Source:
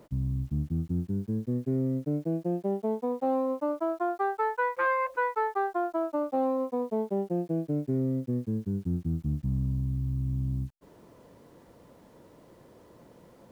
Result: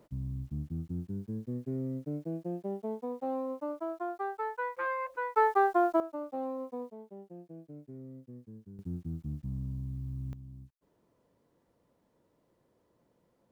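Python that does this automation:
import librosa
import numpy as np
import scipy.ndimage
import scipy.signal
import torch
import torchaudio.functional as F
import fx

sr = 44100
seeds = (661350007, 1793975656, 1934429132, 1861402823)

y = fx.gain(x, sr, db=fx.steps((0.0, -7.0), (5.36, 3.5), (6.0, -9.0), (6.9, -18.5), (8.79, -8.0), (10.33, -17.5)))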